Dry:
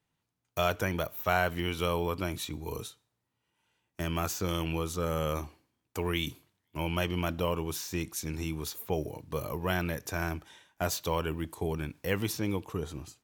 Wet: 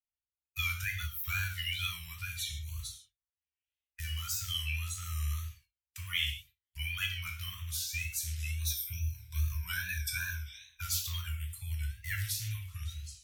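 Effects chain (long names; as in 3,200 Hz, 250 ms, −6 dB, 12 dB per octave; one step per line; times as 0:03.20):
spectral magnitudes quantised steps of 30 dB
0:08.58–0:10.82: EQ curve with evenly spaced ripples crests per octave 1.6, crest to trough 15 dB
reverb whose tail is shaped and stops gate 180 ms falling, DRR 0 dB
tape wow and flutter 81 cents
noise gate with hold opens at −46 dBFS
inverse Chebyshev band-stop filter 280–590 Hz, stop band 80 dB
low-shelf EQ 200 Hz +6 dB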